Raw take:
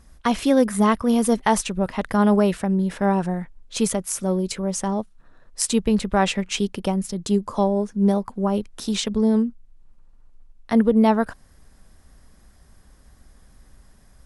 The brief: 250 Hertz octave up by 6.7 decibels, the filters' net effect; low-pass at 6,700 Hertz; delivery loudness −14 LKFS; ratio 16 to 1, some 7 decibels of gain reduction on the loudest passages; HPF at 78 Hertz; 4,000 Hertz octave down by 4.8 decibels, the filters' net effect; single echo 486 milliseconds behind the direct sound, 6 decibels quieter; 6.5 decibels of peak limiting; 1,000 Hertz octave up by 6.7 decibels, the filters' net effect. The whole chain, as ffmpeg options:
ffmpeg -i in.wav -af "highpass=78,lowpass=6700,equalizer=frequency=250:width_type=o:gain=8,equalizer=frequency=1000:width_type=o:gain=8,equalizer=frequency=4000:width_type=o:gain=-6.5,acompressor=threshold=-12dB:ratio=16,alimiter=limit=-10.5dB:level=0:latency=1,aecho=1:1:486:0.501,volume=6.5dB" out.wav

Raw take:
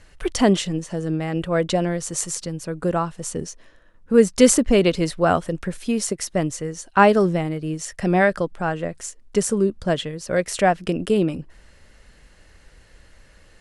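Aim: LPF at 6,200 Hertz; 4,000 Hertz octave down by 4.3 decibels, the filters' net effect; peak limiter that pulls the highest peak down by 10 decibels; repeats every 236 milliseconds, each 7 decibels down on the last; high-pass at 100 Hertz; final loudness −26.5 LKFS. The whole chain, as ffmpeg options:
ffmpeg -i in.wav -af "highpass=100,lowpass=6200,equalizer=frequency=4000:width_type=o:gain=-5.5,alimiter=limit=-11dB:level=0:latency=1,aecho=1:1:236|472|708|944|1180:0.447|0.201|0.0905|0.0407|0.0183,volume=-3dB" out.wav

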